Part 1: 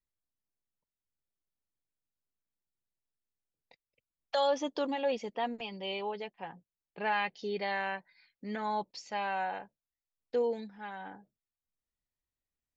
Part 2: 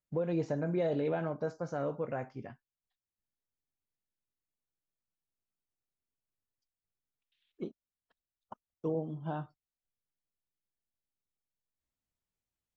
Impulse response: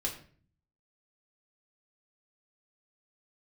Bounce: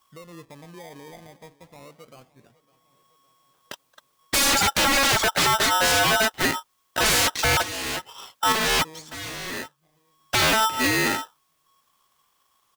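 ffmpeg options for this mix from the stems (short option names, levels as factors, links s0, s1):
-filter_complex "[0:a]aeval=exprs='0.106*sin(PI/2*7.94*val(0)/0.106)':c=same,aeval=exprs='val(0)*sgn(sin(2*PI*1100*n/s))':c=same,volume=1.41[s0];[1:a]acrusher=samples=25:mix=1:aa=0.000001:lfo=1:lforange=15:lforate=0.24,volume=0.266,asplit=3[s1][s2][s3];[s2]volume=0.1[s4];[s3]apad=whole_len=562953[s5];[s0][s5]sidechaincompress=threshold=0.00112:ratio=16:attack=42:release=720[s6];[s4]aecho=0:1:558|1116|1674|2232|2790|3348|3906|4464:1|0.55|0.303|0.166|0.0915|0.0503|0.0277|0.0152[s7];[s6][s1][s7]amix=inputs=3:normalize=0"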